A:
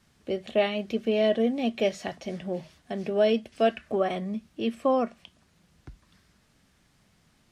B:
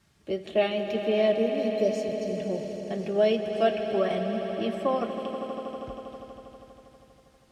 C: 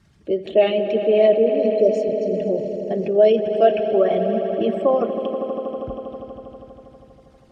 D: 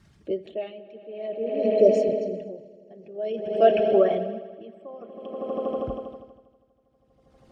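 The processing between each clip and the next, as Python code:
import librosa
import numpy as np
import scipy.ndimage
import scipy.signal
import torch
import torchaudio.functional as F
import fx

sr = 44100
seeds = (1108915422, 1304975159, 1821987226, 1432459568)

y1 = fx.notch_comb(x, sr, f0_hz=250.0)
y1 = fx.spec_erase(y1, sr, start_s=1.32, length_s=1.05, low_hz=630.0, high_hz=4000.0)
y1 = fx.echo_swell(y1, sr, ms=80, loudest=5, wet_db=-13.0)
y2 = fx.envelope_sharpen(y1, sr, power=1.5)
y2 = y2 * 10.0 ** (8.5 / 20.0)
y3 = y2 * 10.0 ** (-24 * (0.5 - 0.5 * np.cos(2.0 * np.pi * 0.52 * np.arange(len(y2)) / sr)) / 20.0)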